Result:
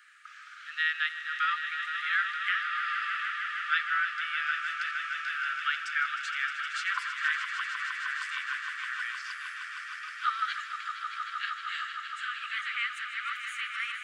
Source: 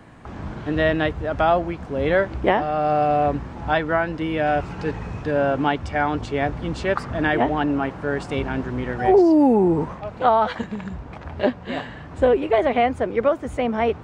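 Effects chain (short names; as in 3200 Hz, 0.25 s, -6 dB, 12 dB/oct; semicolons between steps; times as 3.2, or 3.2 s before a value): Chebyshev high-pass 1200 Hz, order 10; 6.9–8.45 ring modulator 200 Hz -> 40 Hz; swelling echo 0.155 s, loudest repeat 5, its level -10 dB; gain -1.5 dB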